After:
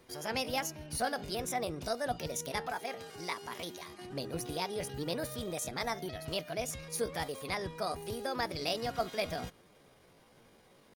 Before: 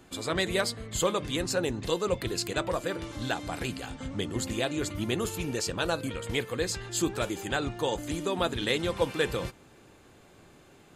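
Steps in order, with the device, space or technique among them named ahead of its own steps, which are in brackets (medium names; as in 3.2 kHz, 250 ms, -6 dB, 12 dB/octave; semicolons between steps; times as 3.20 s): 2.67–4.11 s: high-pass 230 Hz 6 dB/octave; chipmunk voice (pitch shift +5.5 st); trim -6 dB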